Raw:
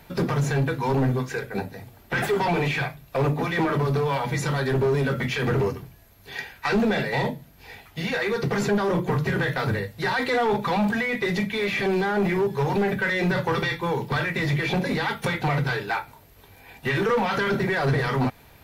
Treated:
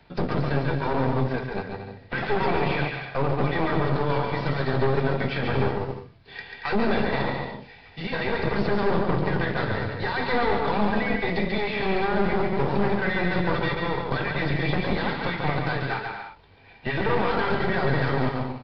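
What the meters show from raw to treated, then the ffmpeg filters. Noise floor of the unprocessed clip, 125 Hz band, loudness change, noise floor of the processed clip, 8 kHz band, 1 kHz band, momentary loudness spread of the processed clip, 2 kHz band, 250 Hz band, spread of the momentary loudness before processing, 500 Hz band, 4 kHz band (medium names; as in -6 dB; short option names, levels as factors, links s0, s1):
-52 dBFS, -1.5 dB, -1.0 dB, -49 dBFS, under -20 dB, +0.5 dB, 9 LU, -2.0 dB, -1.0 dB, 7 LU, -1.0 dB, -2.0 dB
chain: -filter_complex "[0:a]asplit=2[s0][s1];[s1]acrusher=bits=5:dc=4:mix=0:aa=0.000001,volume=0.299[s2];[s0][s2]amix=inputs=2:normalize=0,aecho=1:1:140|231|290.2|328.6|353.6:0.631|0.398|0.251|0.158|0.1,acrossover=split=120|890[s3][s4][s5];[s4]aeval=exprs='0.376*(cos(1*acos(clip(val(0)/0.376,-1,1)))-cos(1*PI/2))+0.106*(cos(4*acos(clip(val(0)/0.376,-1,1)))-cos(4*PI/2))+0.0376*(cos(8*acos(clip(val(0)/0.376,-1,1)))-cos(8*PI/2))':c=same[s6];[s3][s6][s5]amix=inputs=3:normalize=0,aresample=11025,aresample=44100,volume=0.473"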